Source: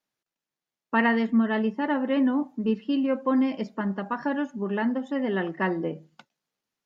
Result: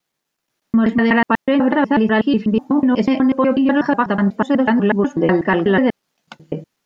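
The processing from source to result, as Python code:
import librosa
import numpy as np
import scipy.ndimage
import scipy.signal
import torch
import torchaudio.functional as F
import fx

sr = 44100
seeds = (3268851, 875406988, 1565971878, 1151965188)

p1 = fx.block_reorder(x, sr, ms=123.0, group=6)
p2 = fx.over_compress(p1, sr, threshold_db=-26.0, ratio=-0.5)
p3 = p1 + (p2 * librosa.db_to_amplitude(-0.5))
y = p3 * librosa.db_to_amplitude(6.0)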